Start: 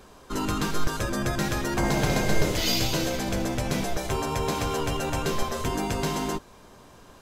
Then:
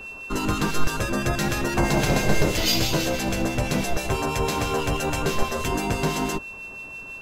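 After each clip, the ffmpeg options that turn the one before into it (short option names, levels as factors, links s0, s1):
-filter_complex "[0:a]aeval=exprs='val(0)+0.0126*sin(2*PI*2700*n/s)':c=same,acrossover=split=1700[s0][s1];[s0]aeval=exprs='val(0)*(1-0.5/2+0.5/2*cos(2*PI*6.1*n/s))':c=same[s2];[s1]aeval=exprs='val(0)*(1-0.5/2-0.5/2*cos(2*PI*6.1*n/s))':c=same[s3];[s2][s3]amix=inputs=2:normalize=0,volume=1.78"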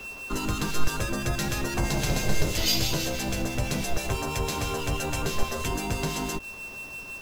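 -filter_complex "[0:a]acrossover=split=130|3000[s0][s1][s2];[s1]acompressor=threshold=0.0316:ratio=2.5[s3];[s0][s3][s2]amix=inputs=3:normalize=0,asplit=2[s4][s5];[s5]acrusher=bits=5:mix=0:aa=0.000001,volume=0.447[s6];[s4][s6]amix=inputs=2:normalize=0,volume=0.596"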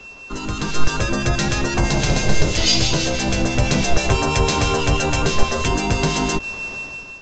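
-af "dynaudnorm=f=270:g=5:m=4.22,aresample=16000,aresample=44100"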